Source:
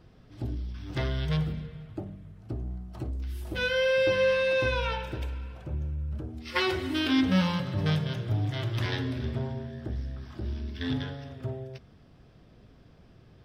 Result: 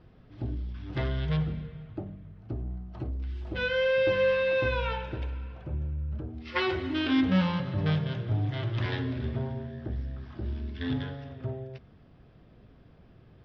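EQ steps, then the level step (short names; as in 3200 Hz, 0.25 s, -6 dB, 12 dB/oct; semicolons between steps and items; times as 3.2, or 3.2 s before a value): LPF 4700 Hz 12 dB/oct; air absorption 120 m; 0.0 dB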